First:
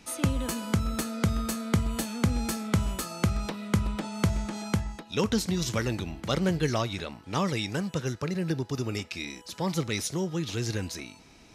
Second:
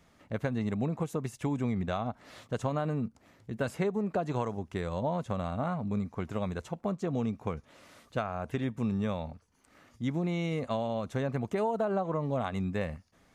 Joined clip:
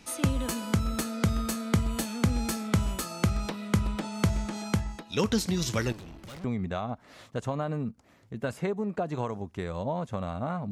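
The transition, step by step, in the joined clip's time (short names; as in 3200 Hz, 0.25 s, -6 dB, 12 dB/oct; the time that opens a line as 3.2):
first
5.92–6.44 tube stage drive 42 dB, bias 0.65
6.44 switch to second from 1.61 s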